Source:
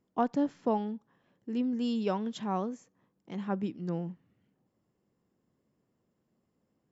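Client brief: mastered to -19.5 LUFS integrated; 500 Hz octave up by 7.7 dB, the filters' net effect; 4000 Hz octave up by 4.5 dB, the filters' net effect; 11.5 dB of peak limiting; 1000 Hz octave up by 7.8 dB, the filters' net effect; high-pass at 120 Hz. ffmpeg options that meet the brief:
-af "highpass=120,equalizer=f=500:t=o:g=7.5,equalizer=f=1k:t=o:g=7,equalizer=f=4k:t=o:g=5.5,volume=13dB,alimiter=limit=-7dB:level=0:latency=1"

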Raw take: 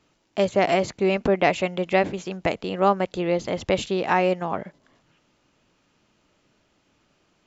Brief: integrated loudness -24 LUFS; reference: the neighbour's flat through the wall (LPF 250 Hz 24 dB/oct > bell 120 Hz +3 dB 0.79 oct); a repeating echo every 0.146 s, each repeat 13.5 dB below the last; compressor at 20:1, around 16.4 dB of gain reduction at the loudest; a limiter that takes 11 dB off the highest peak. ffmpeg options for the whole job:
-af "acompressor=threshold=-31dB:ratio=20,alimiter=level_in=6.5dB:limit=-24dB:level=0:latency=1,volume=-6.5dB,lowpass=f=250:w=0.5412,lowpass=f=250:w=1.3066,equalizer=f=120:t=o:w=0.79:g=3,aecho=1:1:146|292:0.211|0.0444,volume=23.5dB"

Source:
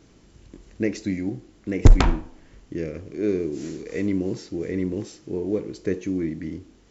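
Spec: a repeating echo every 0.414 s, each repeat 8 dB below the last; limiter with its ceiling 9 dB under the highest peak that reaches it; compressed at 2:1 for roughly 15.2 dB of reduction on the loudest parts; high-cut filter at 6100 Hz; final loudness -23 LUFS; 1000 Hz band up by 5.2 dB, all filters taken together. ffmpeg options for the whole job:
-af "lowpass=6.1k,equalizer=f=1k:t=o:g=6.5,acompressor=threshold=-35dB:ratio=2,alimiter=level_in=0.5dB:limit=-24dB:level=0:latency=1,volume=-0.5dB,aecho=1:1:414|828|1242|1656|2070:0.398|0.159|0.0637|0.0255|0.0102,volume=13dB"

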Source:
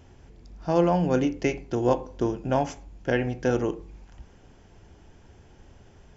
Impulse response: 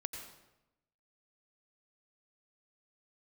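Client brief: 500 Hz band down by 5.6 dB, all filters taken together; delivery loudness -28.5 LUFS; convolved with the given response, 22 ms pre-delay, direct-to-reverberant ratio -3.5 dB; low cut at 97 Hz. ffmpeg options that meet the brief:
-filter_complex "[0:a]highpass=97,equalizer=f=500:t=o:g=-7,asplit=2[a][b];[1:a]atrim=start_sample=2205,adelay=22[c];[b][c]afir=irnorm=-1:irlink=0,volume=4dB[d];[a][d]amix=inputs=2:normalize=0,volume=-4dB"

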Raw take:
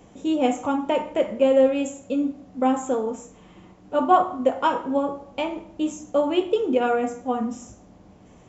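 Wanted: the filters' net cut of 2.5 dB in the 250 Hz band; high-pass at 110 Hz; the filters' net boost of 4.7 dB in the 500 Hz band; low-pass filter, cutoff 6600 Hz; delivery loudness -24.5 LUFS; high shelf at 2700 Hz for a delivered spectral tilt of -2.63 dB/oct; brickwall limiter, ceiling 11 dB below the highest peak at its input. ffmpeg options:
-af "highpass=110,lowpass=6.6k,equalizer=f=250:t=o:g=-5,equalizer=f=500:t=o:g=6,highshelf=f=2.7k:g=5,volume=0.5dB,alimiter=limit=-14dB:level=0:latency=1"

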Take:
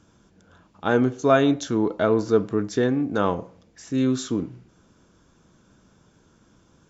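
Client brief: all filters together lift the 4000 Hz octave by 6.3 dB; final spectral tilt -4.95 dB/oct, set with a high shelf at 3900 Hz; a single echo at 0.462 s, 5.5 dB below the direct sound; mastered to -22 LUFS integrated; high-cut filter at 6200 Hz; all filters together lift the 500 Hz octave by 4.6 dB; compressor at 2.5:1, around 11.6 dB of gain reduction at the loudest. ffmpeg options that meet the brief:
-af "lowpass=6.2k,equalizer=f=500:t=o:g=5.5,highshelf=f=3.9k:g=7,equalizer=f=4k:t=o:g=4,acompressor=threshold=-27dB:ratio=2.5,aecho=1:1:462:0.531,volume=6dB"

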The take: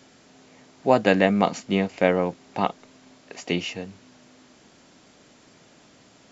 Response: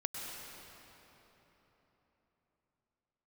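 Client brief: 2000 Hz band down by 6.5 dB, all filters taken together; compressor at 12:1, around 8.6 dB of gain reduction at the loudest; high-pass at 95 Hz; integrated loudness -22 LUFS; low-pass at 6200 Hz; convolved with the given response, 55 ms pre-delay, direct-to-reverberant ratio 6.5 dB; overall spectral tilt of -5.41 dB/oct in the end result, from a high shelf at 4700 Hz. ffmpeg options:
-filter_complex "[0:a]highpass=95,lowpass=6.2k,equalizer=f=2k:t=o:g=-7,highshelf=f=4.7k:g=-6.5,acompressor=threshold=-22dB:ratio=12,asplit=2[a][b];[1:a]atrim=start_sample=2205,adelay=55[c];[b][c]afir=irnorm=-1:irlink=0,volume=-8.5dB[d];[a][d]amix=inputs=2:normalize=0,volume=8.5dB"

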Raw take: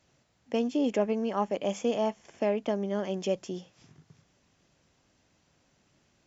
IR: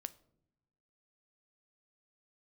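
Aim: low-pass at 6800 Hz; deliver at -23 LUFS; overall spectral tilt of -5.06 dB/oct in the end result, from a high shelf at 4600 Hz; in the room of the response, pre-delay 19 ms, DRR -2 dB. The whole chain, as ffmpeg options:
-filter_complex "[0:a]lowpass=6.8k,highshelf=f=4.6k:g=5,asplit=2[a][b];[1:a]atrim=start_sample=2205,adelay=19[c];[b][c]afir=irnorm=-1:irlink=0,volume=5.5dB[d];[a][d]amix=inputs=2:normalize=0,volume=3.5dB"

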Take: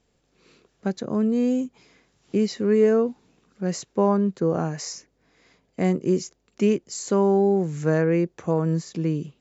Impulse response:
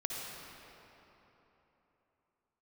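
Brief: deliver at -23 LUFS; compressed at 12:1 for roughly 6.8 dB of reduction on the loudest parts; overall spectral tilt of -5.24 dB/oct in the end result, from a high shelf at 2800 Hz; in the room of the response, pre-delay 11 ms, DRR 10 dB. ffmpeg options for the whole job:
-filter_complex "[0:a]highshelf=f=2.8k:g=6,acompressor=threshold=-21dB:ratio=12,asplit=2[a][b];[1:a]atrim=start_sample=2205,adelay=11[c];[b][c]afir=irnorm=-1:irlink=0,volume=-13dB[d];[a][d]amix=inputs=2:normalize=0,volume=4.5dB"

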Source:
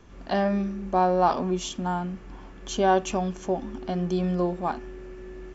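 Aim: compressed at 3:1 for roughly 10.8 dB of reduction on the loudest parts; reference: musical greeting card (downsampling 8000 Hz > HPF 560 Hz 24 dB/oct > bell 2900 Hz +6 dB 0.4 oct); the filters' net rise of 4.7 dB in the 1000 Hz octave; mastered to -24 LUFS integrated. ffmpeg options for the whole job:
-af "equalizer=f=1k:t=o:g=7,acompressor=threshold=-27dB:ratio=3,aresample=8000,aresample=44100,highpass=f=560:w=0.5412,highpass=f=560:w=1.3066,equalizer=f=2.9k:t=o:w=0.4:g=6,volume=9.5dB"

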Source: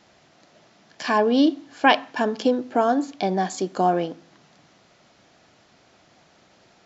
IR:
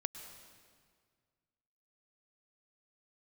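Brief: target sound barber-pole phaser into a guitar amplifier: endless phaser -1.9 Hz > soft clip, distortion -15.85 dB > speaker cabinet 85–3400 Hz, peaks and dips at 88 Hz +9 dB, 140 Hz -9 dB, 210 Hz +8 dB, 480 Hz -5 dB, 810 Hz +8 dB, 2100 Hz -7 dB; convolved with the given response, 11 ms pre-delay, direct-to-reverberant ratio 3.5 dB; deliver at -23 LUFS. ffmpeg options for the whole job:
-filter_complex "[0:a]asplit=2[a][b];[1:a]atrim=start_sample=2205,adelay=11[c];[b][c]afir=irnorm=-1:irlink=0,volume=-3dB[d];[a][d]amix=inputs=2:normalize=0,asplit=2[e][f];[f]afreqshift=-1.9[g];[e][g]amix=inputs=2:normalize=1,asoftclip=threshold=-10.5dB,highpass=85,equalizer=f=88:t=q:w=4:g=9,equalizer=f=140:t=q:w=4:g=-9,equalizer=f=210:t=q:w=4:g=8,equalizer=f=480:t=q:w=4:g=-5,equalizer=f=810:t=q:w=4:g=8,equalizer=f=2.1k:t=q:w=4:g=-7,lowpass=f=3.4k:w=0.5412,lowpass=f=3.4k:w=1.3066,volume=-0.5dB"

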